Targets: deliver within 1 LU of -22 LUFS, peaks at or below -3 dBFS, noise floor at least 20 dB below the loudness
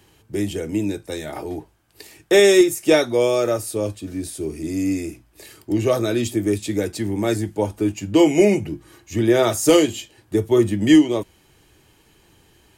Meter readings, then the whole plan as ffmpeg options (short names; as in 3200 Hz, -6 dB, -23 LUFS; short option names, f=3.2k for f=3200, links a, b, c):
loudness -19.5 LUFS; peak -3.5 dBFS; loudness target -22.0 LUFS
-> -af "volume=-2.5dB"